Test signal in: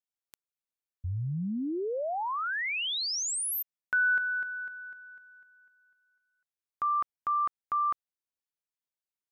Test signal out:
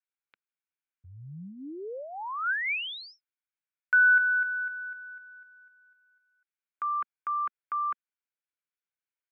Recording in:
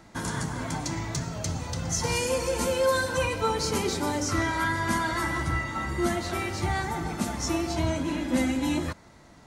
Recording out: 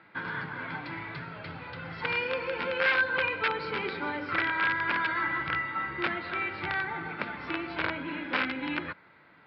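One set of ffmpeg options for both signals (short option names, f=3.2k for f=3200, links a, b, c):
-af "aresample=11025,aeval=exprs='(mod(7.94*val(0)+1,2)-1)/7.94':c=same,aresample=44100,highpass=190,equalizer=f=230:t=q:w=4:g=-9,equalizer=f=350:t=q:w=4:g=-3,equalizer=f=670:t=q:w=4:g=-7,equalizer=f=1.5k:t=q:w=4:g=9,equalizer=f=2.3k:t=q:w=4:g=7,lowpass=f=3.4k:w=0.5412,lowpass=f=3.4k:w=1.3066,volume=-3.5dB"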